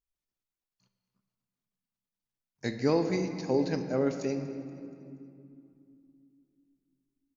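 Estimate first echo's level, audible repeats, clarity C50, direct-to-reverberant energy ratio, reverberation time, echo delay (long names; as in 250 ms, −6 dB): −18.0 dB, 3, 7.5 dB, 6.5 dB, 2.7 s, 238 ms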